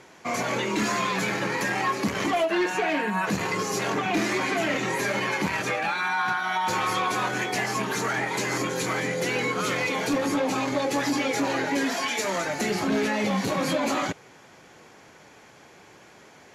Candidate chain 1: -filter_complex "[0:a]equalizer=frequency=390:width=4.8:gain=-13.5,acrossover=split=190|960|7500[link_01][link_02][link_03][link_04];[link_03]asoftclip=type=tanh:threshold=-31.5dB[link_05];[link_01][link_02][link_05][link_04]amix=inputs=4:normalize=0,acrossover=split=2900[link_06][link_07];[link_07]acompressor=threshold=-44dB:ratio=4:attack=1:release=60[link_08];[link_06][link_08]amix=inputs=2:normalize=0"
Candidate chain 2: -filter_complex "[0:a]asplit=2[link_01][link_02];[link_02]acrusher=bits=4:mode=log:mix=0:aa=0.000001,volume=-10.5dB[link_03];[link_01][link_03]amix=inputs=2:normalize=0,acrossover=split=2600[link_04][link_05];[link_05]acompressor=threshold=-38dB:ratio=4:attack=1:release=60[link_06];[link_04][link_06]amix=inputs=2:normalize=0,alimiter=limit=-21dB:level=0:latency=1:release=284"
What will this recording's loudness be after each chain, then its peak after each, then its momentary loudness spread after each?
−29.0, −29.5 LKFS; −16.0, −21.0 dBFS; 3, 20 LU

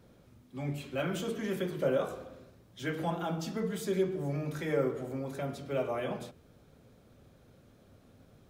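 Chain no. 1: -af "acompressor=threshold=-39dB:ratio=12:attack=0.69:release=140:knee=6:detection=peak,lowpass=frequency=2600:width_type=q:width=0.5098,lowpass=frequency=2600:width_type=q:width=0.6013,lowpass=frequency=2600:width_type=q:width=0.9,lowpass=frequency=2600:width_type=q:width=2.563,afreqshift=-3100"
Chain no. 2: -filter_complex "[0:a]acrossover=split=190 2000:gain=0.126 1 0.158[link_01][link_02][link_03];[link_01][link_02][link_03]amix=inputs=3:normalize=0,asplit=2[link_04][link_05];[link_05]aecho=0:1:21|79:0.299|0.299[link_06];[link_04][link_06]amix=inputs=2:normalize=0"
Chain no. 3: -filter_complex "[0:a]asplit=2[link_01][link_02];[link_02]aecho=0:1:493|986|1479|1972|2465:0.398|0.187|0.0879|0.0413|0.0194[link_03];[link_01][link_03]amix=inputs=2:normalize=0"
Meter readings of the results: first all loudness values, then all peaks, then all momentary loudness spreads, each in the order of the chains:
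−42.0, −35.0, −34.0 LKFS; −34.0, −18.0, −16.0 dBFS; 15, 12, 15 LU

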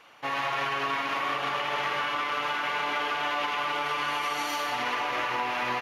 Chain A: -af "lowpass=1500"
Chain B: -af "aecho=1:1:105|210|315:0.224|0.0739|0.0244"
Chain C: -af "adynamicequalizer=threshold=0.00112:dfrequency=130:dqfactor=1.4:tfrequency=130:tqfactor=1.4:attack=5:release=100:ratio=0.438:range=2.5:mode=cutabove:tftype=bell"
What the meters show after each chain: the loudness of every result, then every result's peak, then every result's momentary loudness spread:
−31.5, −28.0, −28.5 LKFS; −18.5, −15.0, −15.5 dBFS; 1, 1, 1 LU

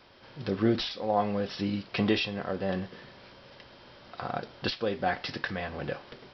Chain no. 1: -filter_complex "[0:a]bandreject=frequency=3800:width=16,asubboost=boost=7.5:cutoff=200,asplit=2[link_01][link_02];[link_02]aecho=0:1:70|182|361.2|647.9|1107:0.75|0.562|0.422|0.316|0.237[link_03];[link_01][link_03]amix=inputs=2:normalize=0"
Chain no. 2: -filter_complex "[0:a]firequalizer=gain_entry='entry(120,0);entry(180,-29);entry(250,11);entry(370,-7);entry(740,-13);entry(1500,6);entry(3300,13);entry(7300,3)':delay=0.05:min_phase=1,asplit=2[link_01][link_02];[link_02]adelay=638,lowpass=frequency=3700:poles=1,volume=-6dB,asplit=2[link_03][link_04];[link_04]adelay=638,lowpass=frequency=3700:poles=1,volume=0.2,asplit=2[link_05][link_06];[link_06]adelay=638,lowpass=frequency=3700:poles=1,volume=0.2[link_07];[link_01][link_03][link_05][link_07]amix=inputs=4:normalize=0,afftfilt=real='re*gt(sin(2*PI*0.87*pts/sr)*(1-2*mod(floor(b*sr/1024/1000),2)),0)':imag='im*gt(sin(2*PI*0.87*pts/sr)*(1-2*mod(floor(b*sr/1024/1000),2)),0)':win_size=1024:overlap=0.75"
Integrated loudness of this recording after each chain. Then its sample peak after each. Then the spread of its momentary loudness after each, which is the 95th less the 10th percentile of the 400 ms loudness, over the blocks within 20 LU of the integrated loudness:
−24.5, −29.0 LKFS; −7.5, −11.0 dBFS; 15, 16 LU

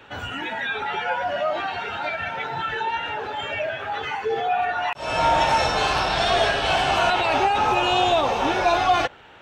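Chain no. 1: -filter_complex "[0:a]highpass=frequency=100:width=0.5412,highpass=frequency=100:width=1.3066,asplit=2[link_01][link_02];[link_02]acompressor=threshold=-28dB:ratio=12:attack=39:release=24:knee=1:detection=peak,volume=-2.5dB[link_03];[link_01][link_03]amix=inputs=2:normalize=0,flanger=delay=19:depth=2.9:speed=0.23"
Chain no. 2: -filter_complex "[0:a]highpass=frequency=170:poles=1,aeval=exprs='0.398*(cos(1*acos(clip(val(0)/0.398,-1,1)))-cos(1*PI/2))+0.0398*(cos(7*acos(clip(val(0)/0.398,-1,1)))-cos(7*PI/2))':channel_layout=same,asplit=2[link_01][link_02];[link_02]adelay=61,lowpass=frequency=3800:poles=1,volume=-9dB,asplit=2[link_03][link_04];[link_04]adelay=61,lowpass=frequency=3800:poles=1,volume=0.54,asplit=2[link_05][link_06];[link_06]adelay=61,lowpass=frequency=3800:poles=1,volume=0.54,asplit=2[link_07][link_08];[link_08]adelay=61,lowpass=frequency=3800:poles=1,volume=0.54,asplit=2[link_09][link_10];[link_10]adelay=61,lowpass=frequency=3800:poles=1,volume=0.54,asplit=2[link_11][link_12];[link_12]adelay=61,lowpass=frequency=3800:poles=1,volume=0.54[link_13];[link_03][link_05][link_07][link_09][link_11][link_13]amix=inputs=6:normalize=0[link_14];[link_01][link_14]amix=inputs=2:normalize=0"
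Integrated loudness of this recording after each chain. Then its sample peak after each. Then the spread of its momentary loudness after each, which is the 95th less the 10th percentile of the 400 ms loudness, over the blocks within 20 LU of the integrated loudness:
−21.5, −23.0 LKFS; −7.0, −7.0 dBFS; 7, 15 LU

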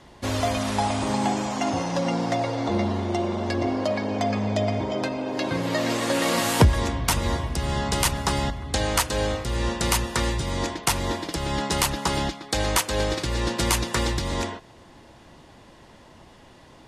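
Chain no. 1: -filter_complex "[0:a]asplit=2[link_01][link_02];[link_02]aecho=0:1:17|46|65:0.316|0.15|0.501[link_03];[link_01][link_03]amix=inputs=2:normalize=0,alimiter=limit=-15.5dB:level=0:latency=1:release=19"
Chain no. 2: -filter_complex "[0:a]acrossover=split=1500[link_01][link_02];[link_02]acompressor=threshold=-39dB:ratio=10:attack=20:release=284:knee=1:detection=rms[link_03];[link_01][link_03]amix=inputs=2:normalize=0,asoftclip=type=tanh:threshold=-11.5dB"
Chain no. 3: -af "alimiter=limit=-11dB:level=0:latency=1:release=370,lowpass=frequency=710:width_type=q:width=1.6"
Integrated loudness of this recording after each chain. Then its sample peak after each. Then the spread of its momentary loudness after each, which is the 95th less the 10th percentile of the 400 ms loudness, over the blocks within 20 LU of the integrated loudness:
−25.0, −27.0, −25.5 LKFS; −15.5, −12.0, −8.0 dBFS; 3, 4, 5 LU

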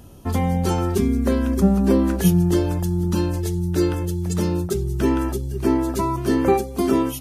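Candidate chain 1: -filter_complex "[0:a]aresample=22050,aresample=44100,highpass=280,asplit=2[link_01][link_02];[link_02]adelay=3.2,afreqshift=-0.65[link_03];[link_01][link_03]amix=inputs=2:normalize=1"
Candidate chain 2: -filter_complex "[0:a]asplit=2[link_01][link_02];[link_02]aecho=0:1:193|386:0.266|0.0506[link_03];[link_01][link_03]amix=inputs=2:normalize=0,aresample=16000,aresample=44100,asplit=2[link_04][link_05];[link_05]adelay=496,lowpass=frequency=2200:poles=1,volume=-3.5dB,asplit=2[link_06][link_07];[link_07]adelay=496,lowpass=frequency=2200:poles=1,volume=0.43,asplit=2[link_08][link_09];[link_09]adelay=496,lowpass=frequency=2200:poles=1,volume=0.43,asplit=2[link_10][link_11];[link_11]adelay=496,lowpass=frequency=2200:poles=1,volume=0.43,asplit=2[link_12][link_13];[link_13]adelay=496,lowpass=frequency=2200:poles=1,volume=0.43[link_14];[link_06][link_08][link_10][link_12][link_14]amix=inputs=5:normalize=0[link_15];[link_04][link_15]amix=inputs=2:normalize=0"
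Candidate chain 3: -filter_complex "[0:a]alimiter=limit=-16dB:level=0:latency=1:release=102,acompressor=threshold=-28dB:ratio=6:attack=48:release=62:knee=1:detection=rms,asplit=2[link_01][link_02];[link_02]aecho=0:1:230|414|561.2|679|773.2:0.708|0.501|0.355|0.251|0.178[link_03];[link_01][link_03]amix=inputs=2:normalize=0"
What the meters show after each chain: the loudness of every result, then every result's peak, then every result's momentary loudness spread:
−28.5, −19.5, −25.5 LKFS; −11.0, −4.5, −13.0 dBFS; 8, 5, 2 LU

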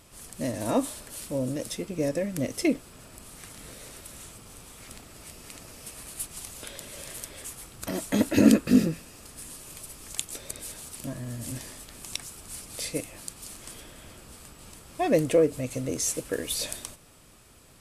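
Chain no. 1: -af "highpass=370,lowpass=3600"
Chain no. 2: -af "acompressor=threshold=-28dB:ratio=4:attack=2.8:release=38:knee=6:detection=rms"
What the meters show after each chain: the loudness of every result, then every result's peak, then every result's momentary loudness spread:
−32.0, −36.0 LKFS; −11.0, −13.5 dBFS; 24, 14 LU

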